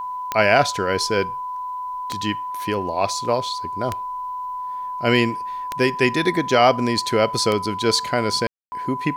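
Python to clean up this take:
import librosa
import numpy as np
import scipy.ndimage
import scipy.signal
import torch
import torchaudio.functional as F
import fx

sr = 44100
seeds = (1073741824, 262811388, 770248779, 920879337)

y = fx.fix_declick_ar(x, sr, threshold=10.0)
y = fx.notch(y, sr, hz=1000.0, q=30.0)
y = fx.fix_ambience(y, sr, seeds[0], print_start_s=1.56, print_end_s=2.06, start_s=8.47, end_s=8.72)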